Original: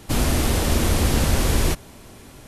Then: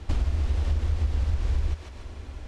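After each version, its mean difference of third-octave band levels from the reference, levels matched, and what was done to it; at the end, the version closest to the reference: 8.5 dB: resonant low shelf 100 Hz +10 dB, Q 3; on a send: thinning echo 145 ms, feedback 24%, level -8 dB; on the sum: compression 8:1, threshold -20 dBFS, peak gain reduction 18.5 dB; distance through air 110 m; trim -2 dB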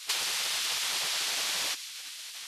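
13.5 dB: spectral gate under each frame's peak -20 dB weak; peaking EQ 4 kHz +13.5 dB 2.4 oct; compression 16:1, threshold -28 dBFS, peak gain reduction 13 dB; on a send: feedback echo behind a high-pass 132 ms, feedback 55%, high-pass 2.3 kHz, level -10.5 dB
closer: first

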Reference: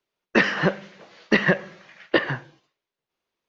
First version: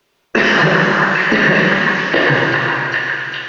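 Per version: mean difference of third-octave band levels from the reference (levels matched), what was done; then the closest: 11.5 dB: compression, threshold -27 dBFS, peak gain reduction 13.5 dB; repeats whose band climbs or falls 400 ms, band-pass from 1.2 kHz, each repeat 0.7 oct, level -1 dB; plate-style reverb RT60 2.7 s, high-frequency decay 0.9×, pre-delay 0 ms, DRR -1 dB; loudness maximiser +20.5 dB; trim -1.5 dB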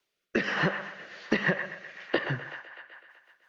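4.5 dB: compression 6:1, threshold -22 dBFS, peak gain reduction 9.5 dB; on a send: feedback echo behind a band-pass 126 ms, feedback 62%, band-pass 1.4 kHz, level -6 dB; on the sum: rotary cabinet horn 1.2 Hz, later 6 Hz, at 2.01 s; tape noise reduction on one side only encoder only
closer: second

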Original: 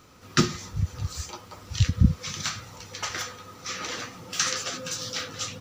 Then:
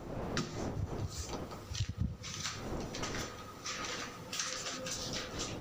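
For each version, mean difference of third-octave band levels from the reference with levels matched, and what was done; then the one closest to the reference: 6.5 dB: wind noise 460 Hz -36 dBFS; compression 3:1, threshold -32 dBFS, peak gain reduction 15 dB; on a send: feedback echo behind a low-pass 102 ms, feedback 73%, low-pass 2.2 kHz, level -16.5 dB; on the sum: trim -4.5 dB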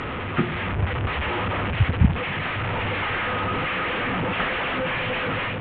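14.5 dB: one-bit delta coder 16 kbps, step -21 dBFS; distance through air 85 m; level rider gain up to 5 dB; trim -2 dB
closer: first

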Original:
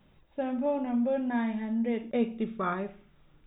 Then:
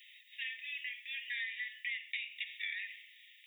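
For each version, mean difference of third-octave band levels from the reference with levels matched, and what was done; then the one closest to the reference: 19.0 dB: Chebyshev high-pass 1.8 kHz, order 10; compression 12:1, threshold -53 dBFS, peak gain reduction 11.5 dB; trim +17 dB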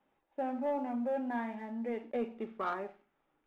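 3.5 dB: three-band isolator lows -20 dB, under 340 Hz, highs -17 dB, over 2.6 kHz; waveshaping leveller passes 1; small resonant body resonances 260/810 Hz, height 7 dB, ringing for 30 ms; trim -6.5 dB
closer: second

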